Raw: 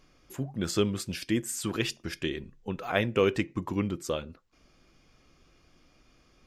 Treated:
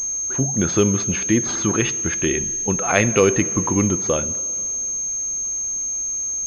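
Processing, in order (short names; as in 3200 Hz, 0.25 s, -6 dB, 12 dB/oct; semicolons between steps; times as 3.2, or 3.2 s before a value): plate-style reverb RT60 2.6 s, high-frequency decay 0.9×, DRR 18 dB; in parallel at +2 dB: limiter -21.5 dBFS, peak gain reduction 11 dB; 2.28–3.2 on the sum: dynamic EQ 2400 Hz, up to +6 dB, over -39 dBFS, Q 1.9; pulse-width modulation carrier 6400 Hz; gain +4.5 dB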